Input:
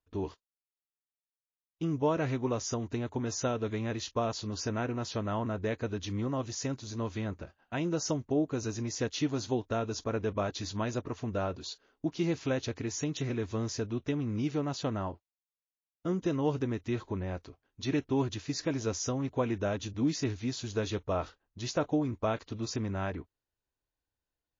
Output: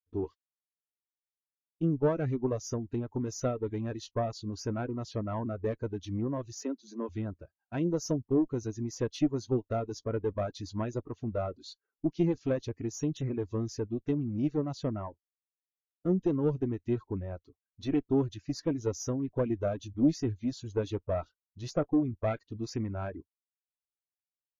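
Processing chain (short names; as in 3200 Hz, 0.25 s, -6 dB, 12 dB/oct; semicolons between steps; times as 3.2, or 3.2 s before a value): one diode to ground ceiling -32.5 dBFS; 6.59–7.09 steep high-pass 180 Hz 96 dB/oct; reverb removal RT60 0.54 s; 22.27–22.94 dynamic EQ 2100 Hz, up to +6 dB, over -58 dBFS, Q 1.9; spectral expander 1.5:1; gain +4 dB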